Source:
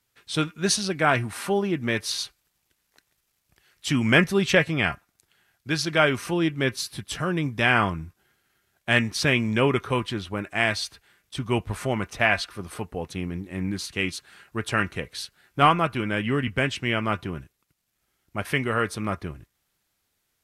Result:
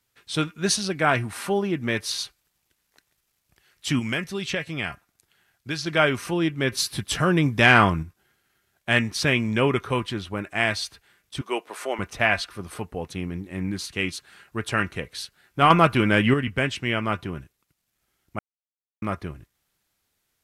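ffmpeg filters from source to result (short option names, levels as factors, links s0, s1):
-filter_complex "[0:a]asettb=1/sr,asplit=3[s0][s1][s2];[s0]atrim=end=3.994[s3];[s1]atrim=start=3.99:end=5.86,asetpts=PTS-STARTPTS,afade=t=in:d=0.004:c=qsin,afade=t=out:st=1.866:d=0.004:c=qsin,acrossover=split=2400|7700[s4][s5][s6];[s4]acompressor=threshold=0.0398:ratio=4[s7];[s5]acompressor=threshold=0.0282:ratio=4[s8];[s6]acompressor=threshold=0.00251:ratio=4[s9];[s7][s8][s9]amix=inputs=3:normalize=0[s10];[s2]atrim=start=5.856[s11];[s3][s10]acrossfade=d=0.004:c1=hsin:c2=qsin[s12];[s12][s11]acrossfade=d=0.004:c1=qsin:c2=hsin,asettb=1/sr,asplit=3[s13][s14][s15];[s13]atrim=end=6.724[s16];[s14]atrim=start=6.72:end=8.03,asetpts=PTS-STARTPTS,afade=t=in:d=0.004:c=qsin,afade=t=out:st=1.306:d=0.004:c=qsin,acontrast=43[s17];[s15]atrim=start=8.026[s18];[s16][s17]acrossfade=d=0.004:c1=hsin:c2=qsin[s19];[s19][s18]acrossfade=d=0.004:c1=qsin:c2=hsin,asettb=1/sr,asplit=3[s20][s21][s22];[s20]atrim=end=11.414[s23];[s21]atrim=start=11.41:end=11.99,asetpts=PTS-STARTPTS,afade=t=in:d=0.004:c=qsin,afade=t=out:st=0.576:d=0.004:c=qsin,highpass=f=350:w=0.5412,highpass=f=350:w=1.3066[s24];[s22]atrim=start=11.986[s25];[s23][s24]acrossfade=d=0.004:c1=hsin:c2=qsin[s26];[s26][s25]acrossfade=d=0.004:c1=qsin:c2=hsin,asettb=1/sr,asplit=3[s27][s28][s29];[s27]atrim=end=15.704[s30];[s28]atrim=start=15.7:end=16.34,asetpts=PTS-STARTPTS,afade=t=in:d=0.004:c=qsin,afade=t=out:st=0.636:d=0.004:c=qsin,acontrast=86[s31];[s29]atrim=start=16.336[s32];[s30][s31]acrossfade=d=0.004:c1=hsin:c2=qsin[s33];[s33][s32]acrossfade=d=0.004:c1=qsin:c2=hsin,asplit=3[s34][s35][s36];[s34]atrim=end=18.39,asetpts=PTS-STARTPTS,afade=t=out:st=18.386:d=0.004:c=hsin[s37];[s35]atrim=start=18.39:end=19.02,asetpts=PTS-STARTPTS,volume=0[s38];[s36]atrim=start=19.02,asetpts=PTS-STARTPTS,afade=t=in:d=0.004:c=hsin[s39];[s37][s38][s39]concat=n=3:v=0:a=1"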